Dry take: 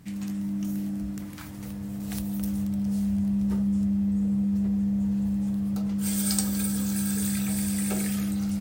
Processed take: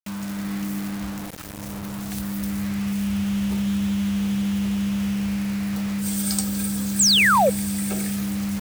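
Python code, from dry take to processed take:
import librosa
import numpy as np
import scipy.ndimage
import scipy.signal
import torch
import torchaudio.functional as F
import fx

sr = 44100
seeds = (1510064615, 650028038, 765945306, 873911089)

y = fx.spec_paint(x, sr, seeds[0], shape='fall', start_s=6.99, length_s=0.51, low_hz=470.0, high_hz=8600.0, level_db=-18.0)
y = fx.quant_dither(y, sr, seeds[1], bits=6, dither='none')
y = y * 10.0 ** (1.5 / 20.0)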